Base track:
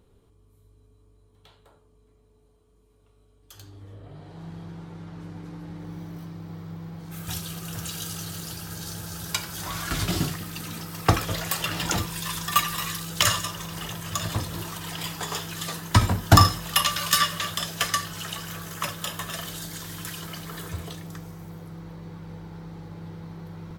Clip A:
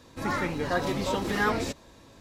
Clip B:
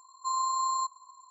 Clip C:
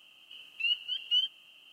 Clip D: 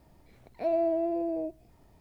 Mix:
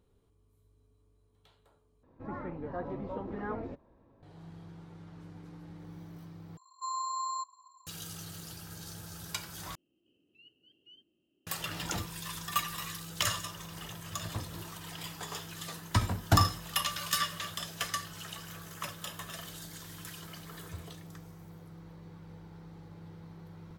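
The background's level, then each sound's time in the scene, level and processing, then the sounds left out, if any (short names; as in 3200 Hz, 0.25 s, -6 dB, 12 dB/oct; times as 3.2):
base track -9.5 dB
2.03 replace with A -9 dB + LPF 1000 Hz
6.57 replace with B -7 dB + bell 2900 Hz +2.5 dB 2.4 oct
9.75 replace with C -2.5 dB + EQ curve 170 Hz 0 dB, 360 Hz +8 dB, 650 Hz -15 dB, 990 Hz -28 dB
not used: D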